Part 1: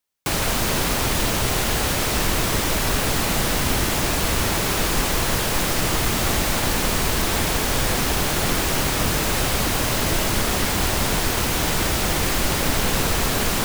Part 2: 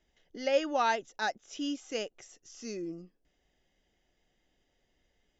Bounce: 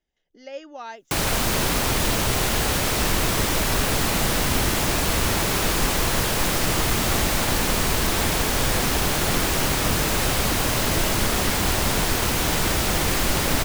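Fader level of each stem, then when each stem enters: -0.5, -8.5 dB; 0.85, 0.00 s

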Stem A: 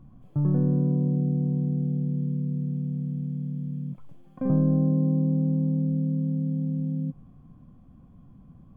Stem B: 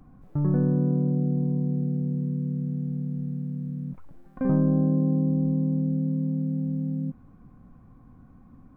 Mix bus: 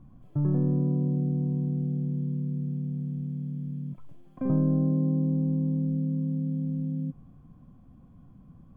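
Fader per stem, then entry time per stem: -1.5, -14.0 dB; 0.00, 0.00 s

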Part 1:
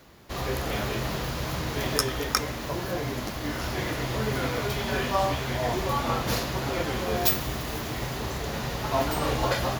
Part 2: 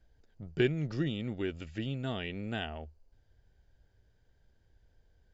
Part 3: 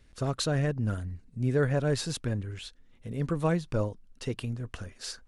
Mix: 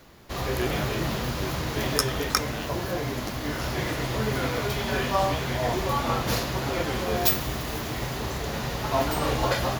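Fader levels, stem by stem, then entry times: +1.0, -2.0, -13.5 dB; 0.00, 0.00, 1.90 s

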